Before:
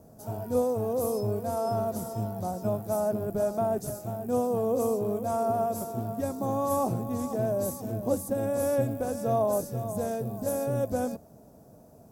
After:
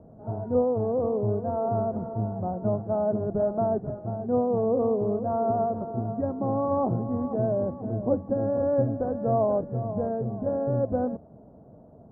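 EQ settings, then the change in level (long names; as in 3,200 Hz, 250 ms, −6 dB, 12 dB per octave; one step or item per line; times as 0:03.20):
Bessel low-pass filter 900 Hz, order 8
+3.5 dB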